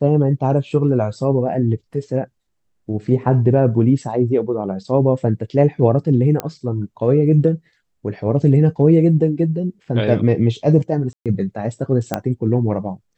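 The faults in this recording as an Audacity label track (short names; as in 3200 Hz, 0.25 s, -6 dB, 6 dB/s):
6.400000	6.400000	pop -8 dBFS
11.130000	11.260000	gap 0.127 s
12.140000	12.140000	pop -5 dBFS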